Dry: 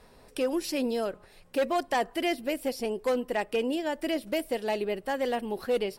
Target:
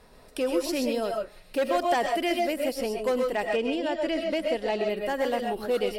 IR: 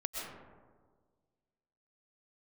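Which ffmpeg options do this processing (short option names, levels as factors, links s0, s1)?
-filter_complex "[0:a]asettb=1/sr,asplit=3[s0][s1][s2];[s0]atrim=end=3.514[s3];[s1]atrim=start=3.51:end=4.87,asetpts=PTS-STARTPTS,afade=t=in:d=0.004:c=qsin,afade=t=out:st=1.356:d=0.004:c=qsin,lowpass=6100[s4];[s2]atrim=start=4.866[s5];[s3][s4]acrossfade=d=0.004:c1=hsin:c2=qsin[s6];[s6][s5]acrossfade=d=0.004:c1=qsin:c2=hsin[s7];[1:a]atrim=start_sample=2205,atrim=end_sample=6615[s8];[s7][s8]afir=irnorm=-1:irlink=0,volume=1.33"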